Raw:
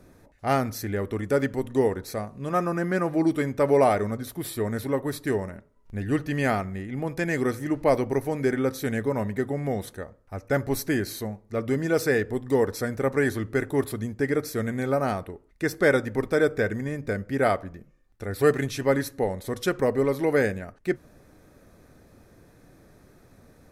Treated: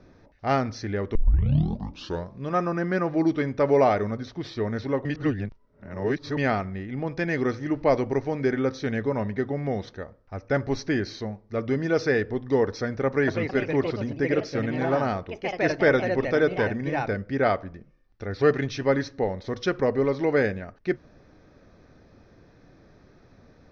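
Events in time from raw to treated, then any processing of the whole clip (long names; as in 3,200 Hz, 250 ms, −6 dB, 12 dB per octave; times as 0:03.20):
0:01.15: tape start 1.28 s
0:05.05–0:06.37: reverse
0:13.06–0:17.69: delay with pitch and tempo change per echo 216 ms, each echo +3 semitones, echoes 2, each echo −6 dB
whole clip: Butterworth low-pass 5,900 Hz 72 dB per octave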